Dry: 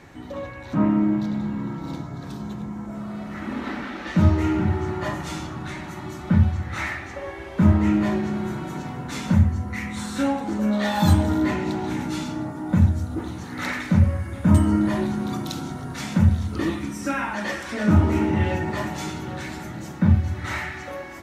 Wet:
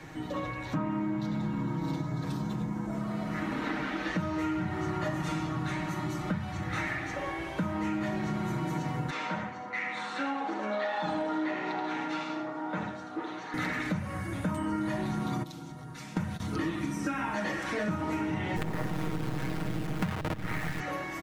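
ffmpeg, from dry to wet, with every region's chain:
ffmpeg -i in.wav -filter_complex "[0:a]asettb=1/sr,asplit=3[link_01][link_02][link_03];[link_01]atrim=end=9.104[link_04];[link_02]atrim=start=9.1:end=13.54,asetpts=PTS-STARTPTS,afade=type=in:duration=0.004:curve=qsin,afade=type=out:start_time=4.436:duration=0.004:curve=qsin,highpass=540,lowpass=3200,aecho=1:1:80:0.473,atrim=end_sample=195804[link_05];[link_03]atrim=start=13.536[link_06];[link_04][link_05]acrossfade=duration=0.004:curve1=hsin:curve2=qsin[link_07];[link_07][link_06]acrossfade=duration=0.004:curve1=qsin:curve2=hsin,asettb=1/sr,asplit=3[link_08][link_09][link_10];[link_08]atrim=end=15.434[link_11];[link_09]atrim=start=15.43:end=16.4,asetpts=PTS-STARTPTS,afade=type=in:duration=0.004:curve=qsin,afade=type=out:start_time=0.966:duration=0.004:curve=qsin,agate=range=-47dB:threshold=-23dB:ratio=16:release=100:detection=peak,acompressor=mode=upward:threshold=-17dB:ratio=2.5:attack=3.2:release=140:knee=2.83:detection=peak[link_12];[link_10]atrim=start=16.396[link_13];[link_11][link_12]acrossfade=duration=0.004:curve1=hsin:curve2=qsin[link_14];[link_14][link_13]acrossfade=duration=0.004:curve1=qsin:curve2=hsin,asettb=1/sr,asplit=3[link_15][link_16][link_17];[link_15]atrim=end=18.564[link_18];[link_16]atrim=start=18.56:end=20.8,asetpts=PTS-STARTPTS,afade=type=in:duration=0.004:curve=qsin,afade=type=out:start_time=2.236:duration=0.004:curve=qsin,bass=frequency=250:gain=12,treble=frequency=4000:gain=-13,acrusher=bits=3:dc=4:mix=0:aa=0.000001[link_19];[link_17]atrim=start=20.796[link_20];[link_18][link_19]acrossfade=duration=0.004:curve1=hsin:curve2=qsin[link_21];[link_21][link_20]acrossfade=duration=0.004:curve1=qsin:curve2=hsin,acrossover=split=150|620|3100[link_22][link_23][link_24][link_25];[link_22]acompressor=threshold=-31dB:ratio=4[link_26];[link_23]acompressor=threshold=-30dB:ratio=4[link_27];[link_24]acompressor=threshold=-31dB:ratio=4[link_28];[link_25]acompressor=threshold=-49dB:ratio=4[link_29];[link_26][link_27][link_28][link_29]amix=inputs=4:normalize=0,aecho=1:1:6.4:0.63,acompressor=threshold=-28dB:ratio=6" out.wav

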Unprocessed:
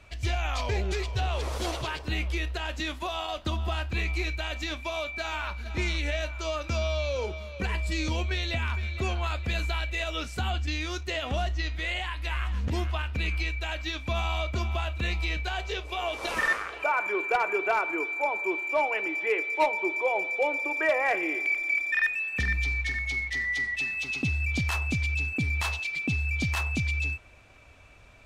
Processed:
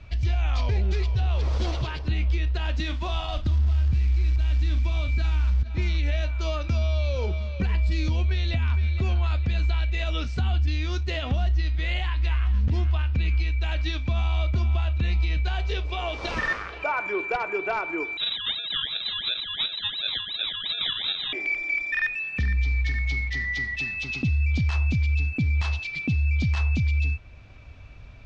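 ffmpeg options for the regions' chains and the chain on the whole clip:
ffmpeg -i in.wav -filter_complex "[0:a]asettb=1/sr,asplit=3[link_01][link_02][link_03];[link_01]atrim=end=2.804[link_04];[link_02]atrim=start=2.8:end=5.63,asetpts=PTS-STARTPTS,afade=type=in:duration=0.004:curve=qsin,afade=type=out:start_time=2.826:duration=0.004:curve=qsin,asubboost=boost=11:cutoff=200,asplit=2[link_05][link_06];[link_06]adelay=42,volume=-11dB[link_07];[link_05][link_07]amix=inputs=2:normalize=0,atrim=end_sample=124803,acrusher=bits=4:mode=log:mix=0:aa=0.000001[link_08];[link_03]atrim=start=5.626[link_09];[link_04][link_08]acrossfade=duration=0.004:curve1=hsin:curve2=qsin[link_10];[link_10][link_09]acrossfade=duration=0.004:curve1=qsin:curve2=hsin,asettb=1/sr,asplit=3[link_11][link_12][link_13];[link_11]atrim=end=18.174[link_14];[link_12]atrim=start=18.17:end=21.33,asetpts=PTS-STARTPTS,afade=type=in:duration=0.004:curve=qsin,afade=type=out:start_time=3.156:duration=0.004:curve=qsin,acrusher=samples=35:mix=1:aa=0.000001:lfo=1:lforange=21:lforate=2.8,lowpass=frequency=3400:width_type=q:width=0.5098,lowpass=frequency=3400:width_type=q:width=0.6013,lowpass=frequency=3400:width_type=q:width=0.9,lowpass=frequency=3400:width_type=q:width=2.563,afreqshift=-4000[link_15];[link_13]atrim=start=21.326[link_16];[link_14][link_15]acrossfade=duration=0.004:curve1=hsin:curve2=qsin[link_17];[link_17][link_16]acrossfade=duration=0.004:curve1=qsin:curve2=hsin,lowpass=frequency=5300:width=0.5412,lowpass=frequency=5300:width=1.3066,bass=frequency=250:gain=12,treble=frequency=4000:gain=4,alimiter=limit=-17dB:level=0:latency=1:release=384" out.wav

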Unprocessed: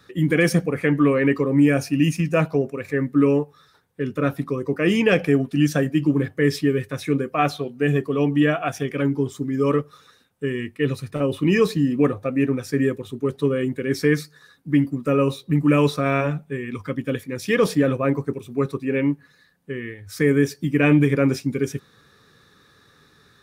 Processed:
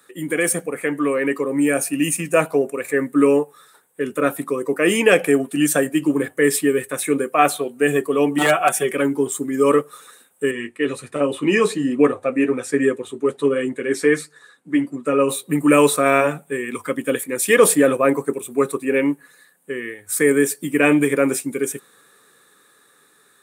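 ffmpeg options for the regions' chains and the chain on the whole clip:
ffmpeg -i in.wav -filter_complex "[0:a]asettb=1/sr,asplit=3[link_01][link_02][link_03];[link_01]atrim=end=8.384[link_04];[link_02]atrim=start=8.38:end=8.95,asetpts=PTS-STARTPTS,afade=type=in:duration=0.004:curve=qsin,afade=type=out:start_time=0.566:duration=0.004:curve=qsin,aeval=exprs='0.251*(abs(mod(val(0)/0.251+3,4)-2)-1)':channel_layout=same,aecho=1:1:5.3:0.79,atrim=end_sample=25137[link_05];[link_03]atrim=start=8.946[link_06];[link_04][link_05]acrossfade=duration=0.004:curve1=hsin:curve2=qsin[link_07];[link_07][link_06]acrossfade=duration=0.004:curve1=qsin:curve2=hsin,asettb=1/sr,asplit=3[link_08][link_09][link_10];[link_08]atrim=end=10.514[link_11];[link_09]atrim=start=10.51:end=15.29,asetpts=PTS-STARTPTS,afade=type=in:duration=0.004:curve=qsin,afade=type=out:start_time=4.776:duration=0.004:curve=qsin,lowpass=5900,flanger=delay=6.2:depth=4.4:regen=-40:speed=1.3:shape=triangular[link_12];[link_10]atrim=start=15.286[link_13];[link_11][link_12]acrossfade=duration=0.004:curve1=hsin:curve2=qsin[link_14];[link_14][link_13]acrossfade=duration=0.004:curve1=qsin:curve2=hsin,highpass=340,highshelf=frequency=6700:width_type=q:width=3:gain=8.5,dynaudnorm=framelen=350:gausssize=11:maxgain=11.5dB" out.wav

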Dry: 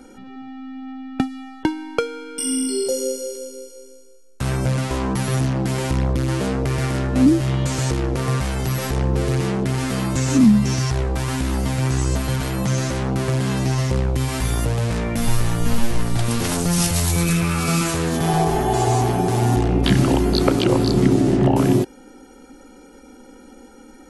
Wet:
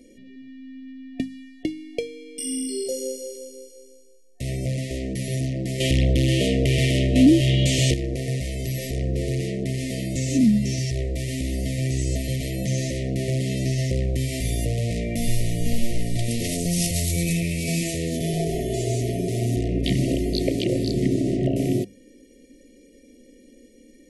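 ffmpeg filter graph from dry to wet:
ffmpeg -i in.wav -filter_complex "[0:a]asettb=1/sr,asplit=3[link_01][link_02][link_03];[link_01]atrim=end=5.804[link_04];[link_02]atrim=start=5.8:end=7.94,asetpts=PTS-STARTPTS,afade=type=in:duration=0.004:curve=qsin,afade=type=out:start_time=2.136:duration=0.004:curve=qsin,equalizer=frequency=3100:width=2.1:gain=9.5,acontrast=80[link_05];[link_03]atrim=start=7.936[link_06];[link_04][link_05]acrossfade=duration=0.004:curve1=hsin:curve2=qsin[link_07];[link_07][link_06]acrossfade=duration=0.004:curve1=qsin:curve2=hsin,afftfilt=real='re*(1-between(b*sr/4096,720,1800))':imag='im*(1-between(b*sr/4096,720,1800))':win_size=4096:overlap=0.75,dynaudnorm=framelen=580:gausssize=17:maxgain=11.5dB,bandreject=frequency=50:width_type=h:width=6,bandreject=frequency=100:width_type=h:width=6,bandreject=frequency=150:width_type=h:width=6,bandreject=frequency=200:width_type=h:width=6,volume=-6dB" out.wav

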